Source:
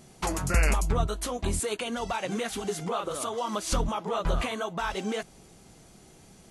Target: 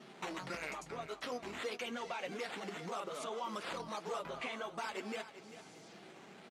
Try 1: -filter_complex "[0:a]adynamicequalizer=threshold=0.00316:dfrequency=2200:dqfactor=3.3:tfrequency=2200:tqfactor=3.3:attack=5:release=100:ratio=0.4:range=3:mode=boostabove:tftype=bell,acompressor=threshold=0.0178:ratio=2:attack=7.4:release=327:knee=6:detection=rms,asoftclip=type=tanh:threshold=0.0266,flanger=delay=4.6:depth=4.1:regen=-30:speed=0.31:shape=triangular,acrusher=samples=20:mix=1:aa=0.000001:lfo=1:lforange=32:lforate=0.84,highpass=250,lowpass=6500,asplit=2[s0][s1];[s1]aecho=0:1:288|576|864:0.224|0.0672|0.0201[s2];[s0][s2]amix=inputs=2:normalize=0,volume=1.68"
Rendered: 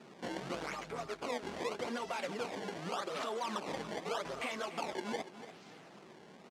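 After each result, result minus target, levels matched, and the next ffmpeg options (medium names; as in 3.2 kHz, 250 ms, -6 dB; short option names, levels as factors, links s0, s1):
echo 105 ms early; decimation with a swept rate: distortion +8 dB; compression: peak gain reduction -4 dB
-filter_complex "[0:a]adynamicequalizer=threshold=0.00316:dfrequency=2200:dqfactor=3.3:tfrequency=2200:tqfactor=3.3:attack=5:release=100:ratio=0.4:range=3:mode=boostabove:tftype=bell,acompressor=threshold=0.0178:ratio=2:attack=7.4:release=327:knee=6:detection=rms,asoftclip=type=tanh:threshold=0.0266,flanger=delay=4.6:depth=4.1:regen=-30:speed=0.31:shape=triangular,acrusher=samples=20:mix=1:aa=0.000001:lfo=1:lforange=32:lforate=0.84,highpass=250,lowpass=6500,asplit=2[s0][s1];[s1]aecho=0:1:393|786|1179:0.224|0.0672|0.0201[s2];[s0][s2]amix=inputs=2:normalize=0,volume=1.68"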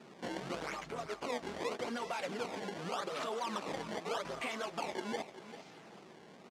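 decimation with a swept rate: distortion +8 dB; compression: peak gain reduction -4 dB
-filter_complex "[0:a]adynamicequalizer=threshold=0.00316:dfrequency=2200:dqfactor=3.3:tfrequency=2200:tqfactor=3.3:attack=5:release=100:ratio=0.4:range=3:mode=boostabove:tftype=bell,acompressor=threshold=0.0178:ratio=2:attack=7.4:release=327:knee=6:detection=rms,asoftclip=type=tanh:threshold=0.0266,flanger=delay=4.6:depth=4.1:regen=-30:speed=0.31:shape=triangular,acrusher=samples=5:mix=1:aa=0.000001:lfo=1:lforange=8:lforate=0.84,highpass=250,lowpass=6500,asplit=2[s0][s1];[s1]aecho=0:1:393|786|1179:0.224|0.0672|0.0201[s2];[s0][s2]amix=inputs=2:normalize=0,volume=1.68"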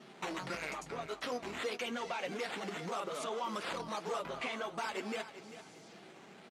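compression: peak gain reduction -4 dB
-filter_complex "[0:a]adynamicequalizer=threshold=0.00316:dfrequency=2200:dqfactor=3.3:tfrequency=2200:tqfactor=3.3:attack=5:release=100:ratio=0.4:range=3:mode=boostabove:tftype=bell,acompressor=threshold=0.00708:ratio=2:attack=7.4:release=327:knee=6:detection=rms,asoftclip=type=tanh:threshold=0.0266,flanger=delay=4.6:depth=4.1:regen=-30:speed=0.31:shape=triangular,acrusher=samples=5:mix=1:aa=0.000001:lfo=1:lforange=8:lforate=0.84,highpass=250,lowpass=6500,asplit=2[s0][s1];[s1]aecho=0:1:393|786|1179:0.224|0.0672|0.0201[s2];[s0][s2]amix=inputs=2:normalize=0,volume=1.68"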